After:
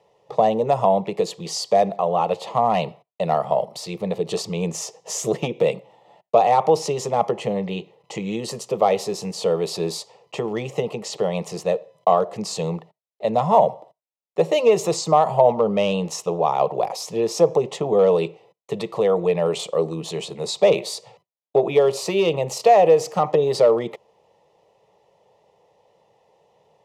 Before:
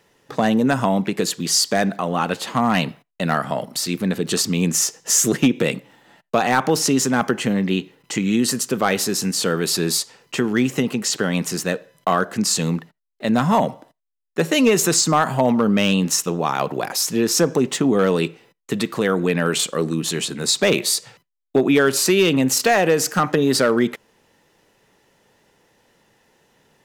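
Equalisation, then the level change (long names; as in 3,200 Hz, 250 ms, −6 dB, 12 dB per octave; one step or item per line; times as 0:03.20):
resonant band-pass 540 Hz, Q 0.5
notch filter 370 Hz, Q 12
phaser with its sweep stopped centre 640 Hz, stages 4
+5.5 dB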